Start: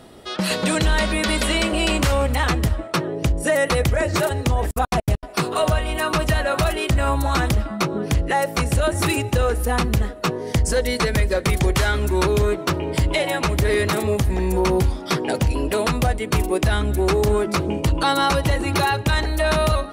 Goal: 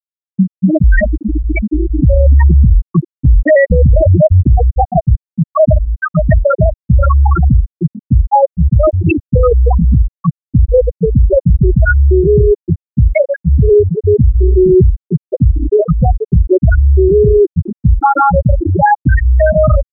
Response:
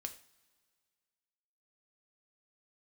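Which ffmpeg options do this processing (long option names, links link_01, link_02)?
-filter_complex "[0:a]asettb=1/sr,asplit=3[link_01][link_02][link_03];[link_01]atrim=end=2.144[link_04];[link_02]atrim=start=2.14:end=4.54,asetpts=PTS-STARTPTS,afade=type=in:duration=0.004:curve=qsin,afade=type=out:start_time=2.396:duration=0.004:curve=qsin,lowshelf=frequency=110:gain=9.5[link_05];[link_03]atrim=start=4.536[link_06];[link_04][link_05]acrossfade=duration=0.004:curve1=hsin:curve2=qsin[link_07];[link_07][link_06]acrossfade=duration=0.004:curve1=qsin:curve2=hsin,afftfilt=real='re*gte(hypot(re,im),0.631)':imag='im*gte(hypot(re,im),0.631)':win_size=1024:overlap=0.75,alimiter=level_in=16dB:limit=-1dB:release=50:level=0:latency=1,volume=-1dB"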